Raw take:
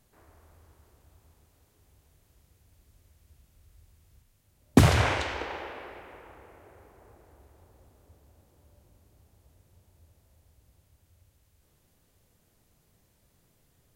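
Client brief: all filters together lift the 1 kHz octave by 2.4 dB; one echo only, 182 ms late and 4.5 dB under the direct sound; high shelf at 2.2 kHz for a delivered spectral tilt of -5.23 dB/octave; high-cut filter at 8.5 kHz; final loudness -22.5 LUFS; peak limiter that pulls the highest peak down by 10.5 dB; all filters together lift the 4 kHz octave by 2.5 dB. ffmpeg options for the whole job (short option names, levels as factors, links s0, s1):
-af "lowpass=8500,equalizer=f=1000:t=o:g=3.5,highshelf=f=2200:g=-3.5,equalizer=f=4000:t=o:g=6.5,alimiter=limit=0.211:level=0:latency=1,aecho=1:1:182:0.596,volume=1.88"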